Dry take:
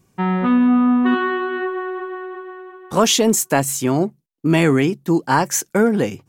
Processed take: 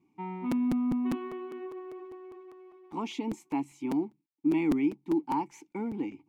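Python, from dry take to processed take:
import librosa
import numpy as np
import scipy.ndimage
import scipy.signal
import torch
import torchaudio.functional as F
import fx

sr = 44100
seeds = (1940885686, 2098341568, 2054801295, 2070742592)

y = fx.law_mismatch(x, sr, coded='mu')
y = fx.vowel_filter(y, sr, vowel='u')
y = fx.buffer_crackle(y, sr, first_s=0.51, period_s=0.2, block=256, kind='repeat')
y = y * 10.0 ** (-4.0 / 20.0)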